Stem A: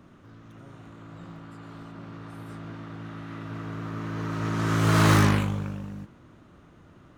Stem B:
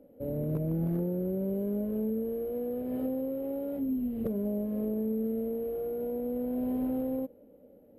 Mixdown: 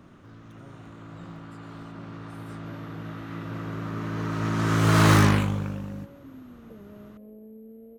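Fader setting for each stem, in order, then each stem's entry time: +1.5, −15.0 decibels; 0.00, 2.45 seconds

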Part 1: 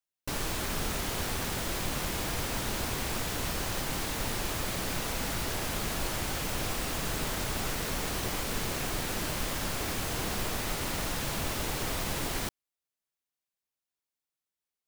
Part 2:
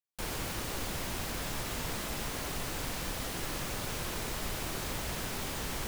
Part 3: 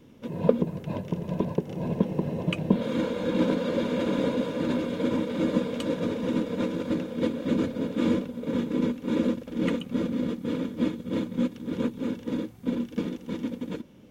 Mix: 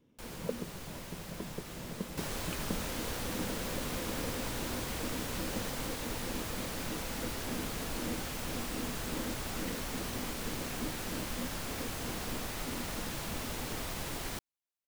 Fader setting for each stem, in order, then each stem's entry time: −6.0, −9.5, −15.5 decibels; 1.90, 0.00, 0.00 seconds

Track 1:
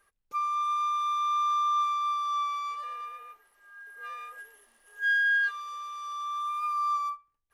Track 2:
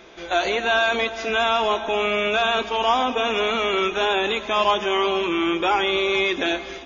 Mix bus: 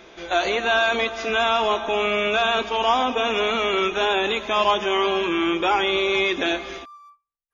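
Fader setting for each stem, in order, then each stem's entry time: −16.5, 0.0 decibels; 0.00, 0.00 seconds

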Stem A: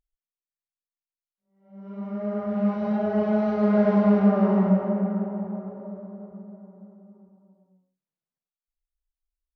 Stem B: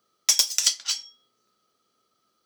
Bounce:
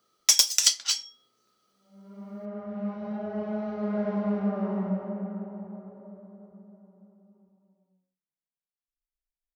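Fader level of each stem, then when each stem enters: −9.0, +0.5 decibels; 0.20, 0.00 seconds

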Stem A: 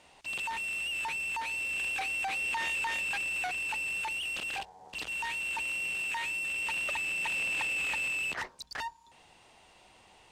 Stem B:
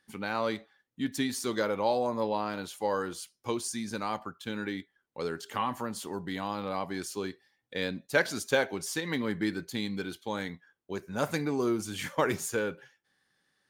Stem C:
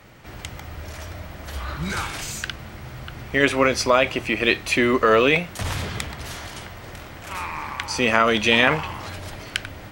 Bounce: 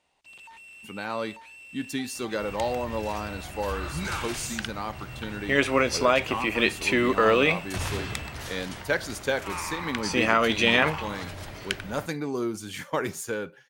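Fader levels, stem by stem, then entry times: −13.0, −0.5, −4.0 decibels; 0.00, 0.75, 2.15 seconds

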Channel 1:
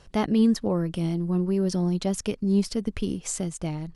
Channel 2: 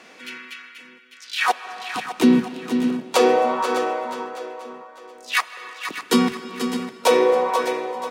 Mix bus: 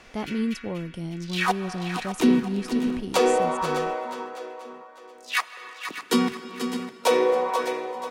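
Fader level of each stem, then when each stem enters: −6.5, −4.0 decibels; 0.00, 0.00 seconds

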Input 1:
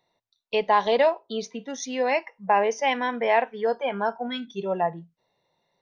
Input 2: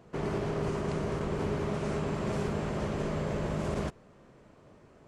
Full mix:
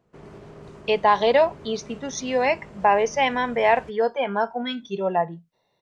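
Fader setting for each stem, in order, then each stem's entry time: +2.5, −11.5 decibels; 0.35, 0.00 seconds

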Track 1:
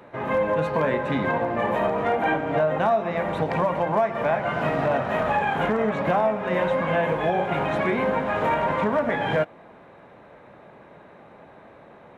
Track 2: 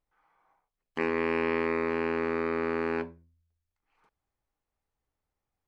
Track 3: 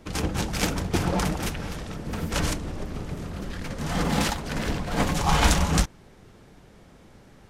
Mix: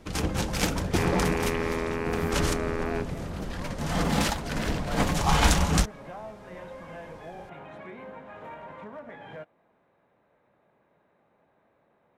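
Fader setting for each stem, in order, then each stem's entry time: −19.5, −1.5, −1.0 decibels; 0.00, 0.00, 0.00 seconds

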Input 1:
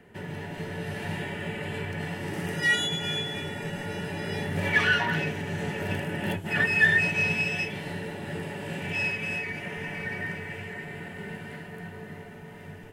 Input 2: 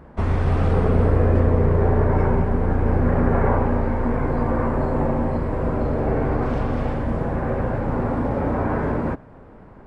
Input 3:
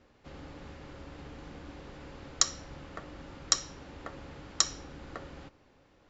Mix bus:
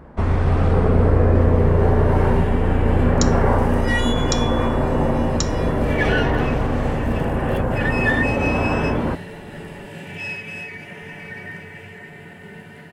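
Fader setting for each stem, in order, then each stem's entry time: −1.0, +2.0, −0.5 decibels; 1.25, 0.00, 0.80 seconds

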